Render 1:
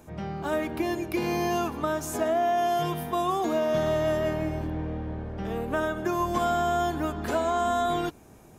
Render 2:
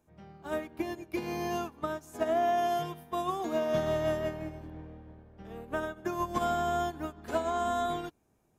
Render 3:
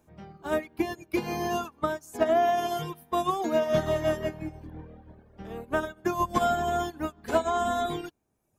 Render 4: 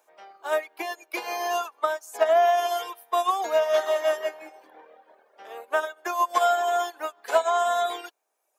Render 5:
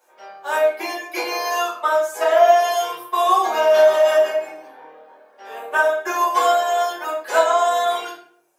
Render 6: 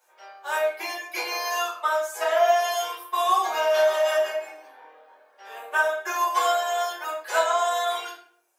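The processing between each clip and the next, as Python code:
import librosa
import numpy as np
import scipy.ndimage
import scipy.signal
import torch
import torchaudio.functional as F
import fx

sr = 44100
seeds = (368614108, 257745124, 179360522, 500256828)

y1 = fx.upward_expand(x, sr, threshold_db=-35.0, expansion=2.5)
y1 = y1 * librosa.db_to_amplitude(-2.0)
y2 = fx.dereverb_blind(y1, sr, rt60_s=1.1)
y2 = y2 * librosa.db_to_amplitude(6.5)
y3 = scipy.signal.sosfilt(scipy.signal.butter(4, 540.0, 'highpass', fs=sr, output='sos'), y2)
y3 = y3 * librosa.db_to_amplitude(4.5)
y4 = fx.room_shoebox(y3, sr, seeds[0], volume_m3=88.0, walls='mixed', distance_m=2.3)
y4 = y4 * librosa.db_to_amplitude(-1.5)
y5 = fx.highpass(y4, sr, hz=1000.0, slope=6)
y5 = y5 * librosa.db_to_amplitude(-2.0)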